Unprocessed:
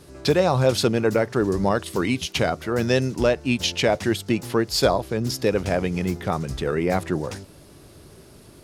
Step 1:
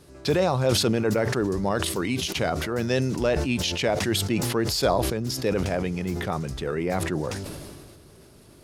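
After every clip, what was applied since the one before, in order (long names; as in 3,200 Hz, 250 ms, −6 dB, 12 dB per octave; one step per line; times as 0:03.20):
level that may fall only so fast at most 29 dB per second
level −4.5 dB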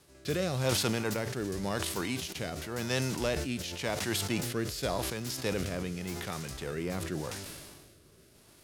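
spectral envelope flattened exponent 0.6
rotating-speaker cabinet horn 0.9 Hz
level −6.5 dB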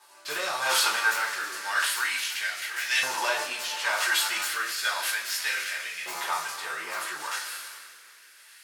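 coupled-rooms reverb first 0.3 s, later 3.5 s, from −20 dB, DRR −6.5 dB
auto-filter high-pass saw up 0.33 Hz 920–2,000 Hz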